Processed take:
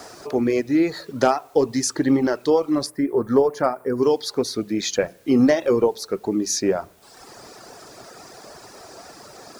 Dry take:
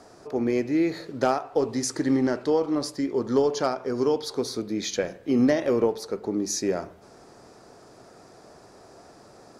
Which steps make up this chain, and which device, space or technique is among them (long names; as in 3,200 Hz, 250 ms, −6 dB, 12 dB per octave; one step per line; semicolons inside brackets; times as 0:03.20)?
reverb reduction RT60 0.94 s
noise-reduction cassette on a plain deck (one half of a high-frequency compander encoder only; tape wow and flutter 27 cents; white noise bed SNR 37 dB)
0:02.86–0:04.03: flat-topped bell 4,300 Hz −13 dB
level +5.5 dB